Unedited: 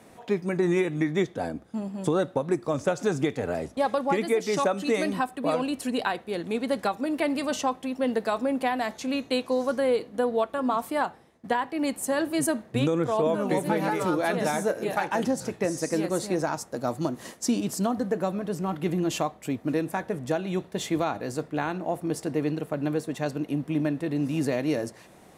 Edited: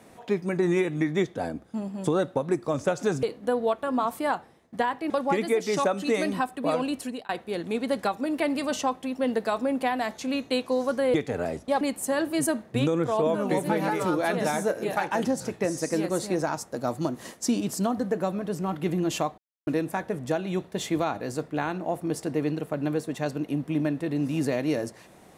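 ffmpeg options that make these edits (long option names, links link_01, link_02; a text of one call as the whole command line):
ffmpeg -i in.wav -filter_complex "[0:a]asplit=8[link_01][link_02][link_03][link_04][link_05][link_06][link_07][link_08];[link_01]atrim=end=3.232[link_09];[link_02]atrim=start=9.938:end=11.812[link_10];[link_03]atrim=start=3.898:end=6.09,asetpts=PTS-STARTPTS,afade=type=out:start_time=1.862:duration=0.33[link_11];[link_04]atrim=start=6.09:end=9.942,asetpts=PTS-STARTPTS,afade=type=in:duration=0.004:curve=hsin[link_12];[link_05]atrim=start=3.228:end=3.902[link_13];[link_06]atrim=start=11.808:end=19.38,asetpts=PTS-STARTPTS,afade=type=out:start_time=7.568:duration=0.004:curve=hsin[link_14];[link_07]atrim=start=19.38:end=19.67,asetpts=PTS-STARTPTS,volume=0[link_15];[link_08]atrim=start=19.67,asetpts=PTS-STARTPTS,afade=type=in:duration=0.004:curve=hsin[link_16];[link_09][link_10]acrossfade=duration=0.004:curve1=hsin:curve2=hsin[link_17];[link_11][link_12]concat=n=2:v=0:a=1[link_18];[link_17][link_18]acrossfade=duration=0.004:curve1=hsin:curve2=hsin[link_19];[link_19][link_13]acrossfade=duration=0.004:curve1=hsin:curve2=hsin[link_20];[link_14][link_15][link_16]concat=n=3:v=0:a=1[link_21];[link_20][link_21]acrossfade=duration=0.004:curve1=hsin:curve2=hsin" out.wav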